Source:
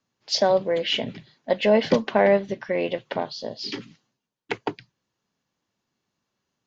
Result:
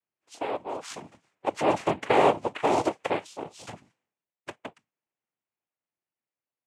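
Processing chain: Doppler pass-by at 2.74, 10 m/s, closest 4.8 m; three-band isolator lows -23 dB, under 250 Hz, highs -16 dB, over 2600 Hz; noise vocoder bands 4; gain +2.5 dB

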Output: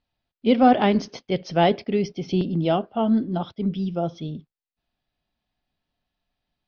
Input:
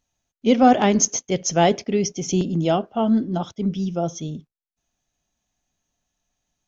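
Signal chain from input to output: steep low-pass 5000 Hz 72 dB/oct; gain -1.5 dB

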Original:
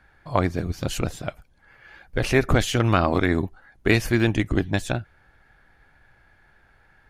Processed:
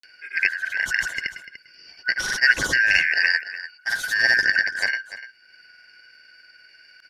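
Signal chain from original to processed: four-band scrambler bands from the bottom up 3142; grains, pitch spread up and down by 0 st; on a send: echo 0.294 s -14 dB; on the sum: upward compressor, threshold -45 dBFS; gain +2 dB

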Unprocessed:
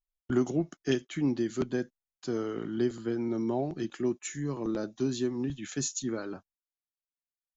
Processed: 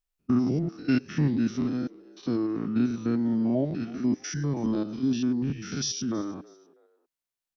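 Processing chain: stepped spectrum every 0.1 s; formant shift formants -3 st; frequency-shifting echo 0.323 s, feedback 31%, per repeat +78 Hz, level -23 dB; gain +6 dB

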